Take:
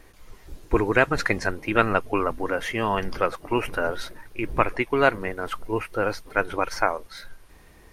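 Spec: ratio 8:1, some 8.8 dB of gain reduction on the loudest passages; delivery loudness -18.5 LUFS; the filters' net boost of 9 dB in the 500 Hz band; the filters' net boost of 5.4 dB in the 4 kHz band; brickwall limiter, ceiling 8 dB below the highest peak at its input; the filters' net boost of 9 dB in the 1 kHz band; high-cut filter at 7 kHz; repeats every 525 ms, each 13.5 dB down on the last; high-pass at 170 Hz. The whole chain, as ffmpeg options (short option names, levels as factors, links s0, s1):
-af "highpass=170,lowpass=7000,equalizer=f=500:t=o:g=8.5,equalizer=f=1000:t=o:g=9,equalizer=f=4000:t=o:g=7,acompressor=threshold=0.2:ratio=8,alimiter=limit=0.355:level=0:latency=1,aecho=1:1:525|1050:0.211|0.0444,volume=1.78"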